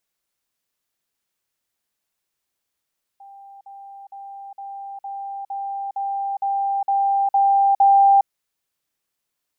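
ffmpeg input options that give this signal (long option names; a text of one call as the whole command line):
ffmpeg -f lavfi -i "aevalsrc='pow(10,(-40+3*floor(t/0.46))/20)*sin(2*PI*792*t)*clip(min(mod(t,0.46),0.41-mod(t,0.46))/0.005,0,1)':duration=5.06:sample_rate=44100" out.wav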